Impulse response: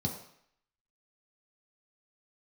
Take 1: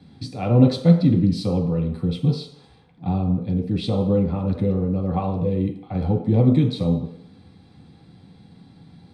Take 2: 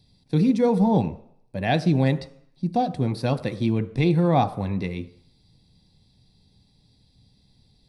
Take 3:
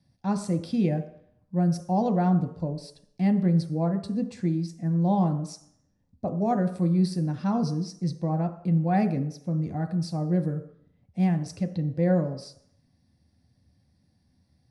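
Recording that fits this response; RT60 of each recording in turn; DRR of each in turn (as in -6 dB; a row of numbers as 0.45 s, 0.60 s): 1; 0.65 s, 0.65 s, 0.65 s; -1.0 dB, 10.0 dB, 5.5 dB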